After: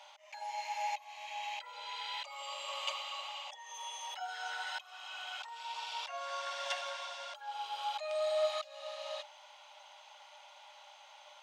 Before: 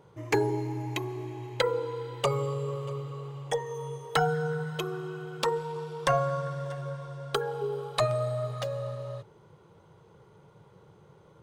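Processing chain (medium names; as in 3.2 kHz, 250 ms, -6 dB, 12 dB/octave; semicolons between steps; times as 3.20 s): high-order bell 4.3 kHz +11 dB; slow attack 628 ms; rippled Chebyshev high-pass 580 Hz, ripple 9 dB; trim +11 dB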